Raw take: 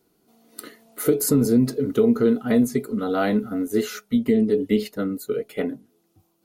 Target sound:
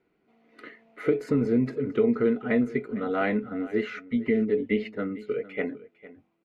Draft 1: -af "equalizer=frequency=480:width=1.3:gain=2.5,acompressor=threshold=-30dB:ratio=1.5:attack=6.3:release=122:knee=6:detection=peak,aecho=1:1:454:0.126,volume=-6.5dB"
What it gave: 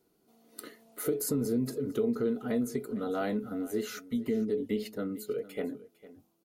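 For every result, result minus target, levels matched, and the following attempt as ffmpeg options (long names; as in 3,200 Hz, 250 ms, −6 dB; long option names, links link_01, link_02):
downward compressor: peak gain reduction +7 dB; 2,000 Hz band −6.0 dB
-af "equalizer=frequency=480:width=1.3:gain=2.5,aecho=1:1:454:0.126,volume=-6.5dB"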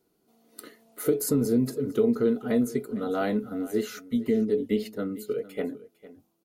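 2,000 Hz band −7.5 dB
-af "lowpass=frequency=2200:width_type=q:width=3.5,equalizer=frequency=480:width=1.3:gain=2.5,aecho=1:1:454:0.126,volume=-6.5dB"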